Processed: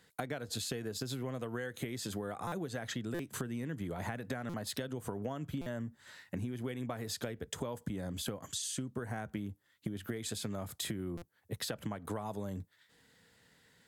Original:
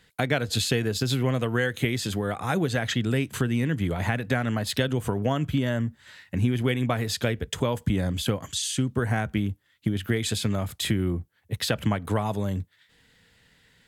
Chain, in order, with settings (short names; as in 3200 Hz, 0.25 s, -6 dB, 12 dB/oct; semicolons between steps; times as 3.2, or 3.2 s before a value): HPF 190 Hz 6 dB/oct; bell 2700 Hz -7.5 dB 1.3 oct; compressor 6:1, threshold -34 dBFS, peak gain reduction 12.5 dB; stuck buffer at 2.47/3.14/4.49/5.61/11.17, samples 256, times 8; gain -1.5 dB